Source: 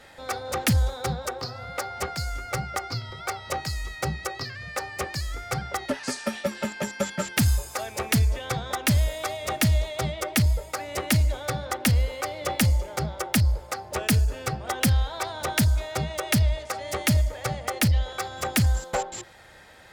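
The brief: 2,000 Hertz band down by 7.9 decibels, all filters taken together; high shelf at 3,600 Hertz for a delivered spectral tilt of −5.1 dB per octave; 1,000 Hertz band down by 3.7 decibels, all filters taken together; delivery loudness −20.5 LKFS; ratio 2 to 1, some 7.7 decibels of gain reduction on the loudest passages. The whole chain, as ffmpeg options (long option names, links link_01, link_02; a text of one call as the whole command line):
ffmpeg -i in.wav -af "equalizer=frequency=1000:width_type=o:gain=-3,equalizer=frequency=2000:width_type=o:gain=-7.5,highshelf=frequency=3600:gain=-5.5,acompressor=threshold=-32dB:ratio=2,volume=13.5dB" out.wav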